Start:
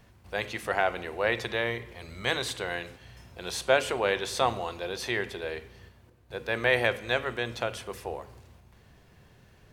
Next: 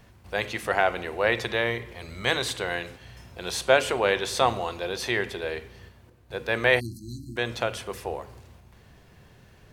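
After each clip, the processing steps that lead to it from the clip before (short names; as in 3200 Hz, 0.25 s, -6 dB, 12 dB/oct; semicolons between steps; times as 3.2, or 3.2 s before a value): spectral delete 6.8–7.37, 360–4000 Hz; gain +3.5 dB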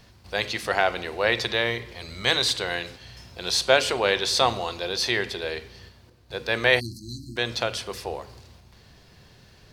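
bell 4600 Hz +11 dB 0.89 oct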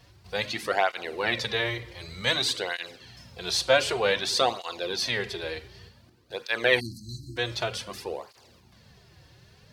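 tape flanging out of phase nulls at 0.54 Hz, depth 5 ms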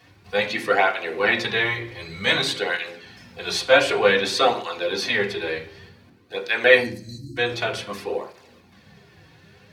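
reverb RT60 0.45 s, pre-delay 3 ms, DRR -1 dB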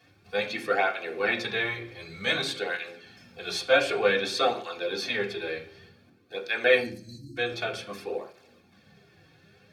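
notch comb 990 Hz; gain -5.5 dB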